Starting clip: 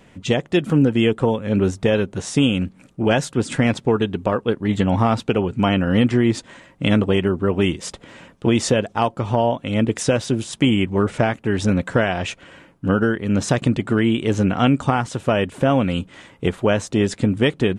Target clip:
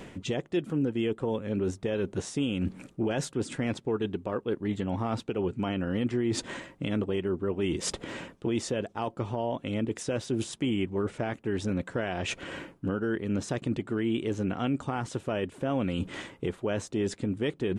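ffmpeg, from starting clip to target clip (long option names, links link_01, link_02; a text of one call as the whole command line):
ffmpeg -i in.wav -af "areverse,acompressor=threshold=-31dB:ratio=6,areverse,equalizer=frequency=360:width_type=o:width=0.76:gain=5.5,alimiter=level_in=2dB:limit=-24dB:level=0:latency=1:release=435,volume=-2dB,volume=6.5dB" out.wav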